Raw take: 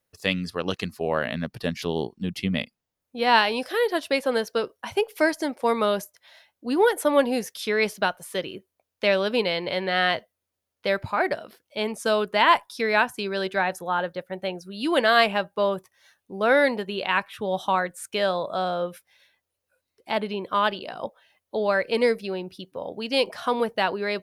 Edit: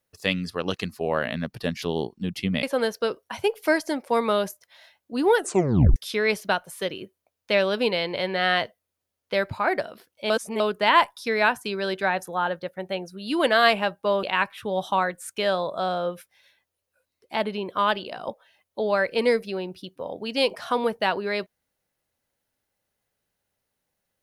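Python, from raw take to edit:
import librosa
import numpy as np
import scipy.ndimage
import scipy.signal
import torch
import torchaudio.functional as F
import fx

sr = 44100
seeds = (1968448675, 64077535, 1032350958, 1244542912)

y = fx.edit(x, sr, fx.cut(start_s=2.63, length_s=1.53),
    fx.tape_stop(start_s=6.89, length_s=0.6),
    fx.reverse_span(start_s=11.83, length_s=0.3),
    fx.cut(start_s=15.76, length_s=1.23), tone=tone)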